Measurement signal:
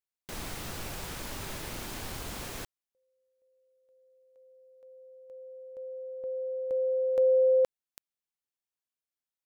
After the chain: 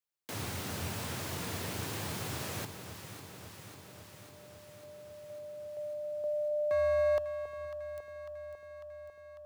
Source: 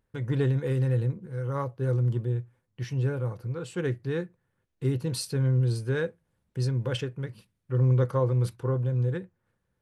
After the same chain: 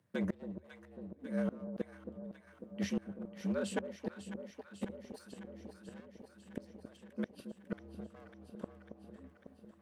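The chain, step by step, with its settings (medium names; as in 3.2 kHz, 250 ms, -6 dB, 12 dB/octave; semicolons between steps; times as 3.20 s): one-sided wavefolder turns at -28 dBFS; dynamic bell 140 Hz, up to -3 dB, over -41 dBFS, Q 2.4; frequency shift +78 Hz; inverted gate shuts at -24 dBFS, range -29 dB; on a send: echo whose repeats swap between lows and highs 274 ms, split 900 Hz, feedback 84%, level -9 dB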